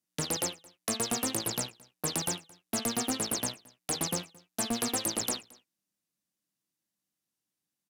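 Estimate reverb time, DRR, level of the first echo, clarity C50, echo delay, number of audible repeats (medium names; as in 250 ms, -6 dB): no reverb, no reverb, -24.0 dB, no reverb, 221 ms, 1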